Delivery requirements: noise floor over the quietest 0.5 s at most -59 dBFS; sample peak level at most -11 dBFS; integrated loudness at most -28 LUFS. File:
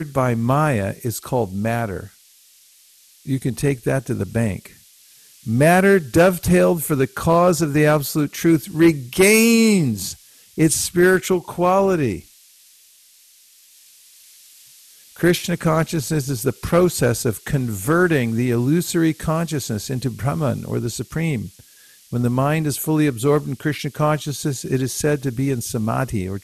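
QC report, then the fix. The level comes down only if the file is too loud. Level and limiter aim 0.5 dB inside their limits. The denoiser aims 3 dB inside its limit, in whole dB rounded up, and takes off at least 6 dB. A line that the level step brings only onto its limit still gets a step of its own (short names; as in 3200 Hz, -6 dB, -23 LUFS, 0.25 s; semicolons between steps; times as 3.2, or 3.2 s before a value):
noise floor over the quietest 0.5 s -52 dBFS: fail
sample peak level -3.0 dBFS: fail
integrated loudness -19.0 LUFS: fail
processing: gain -9.5 dB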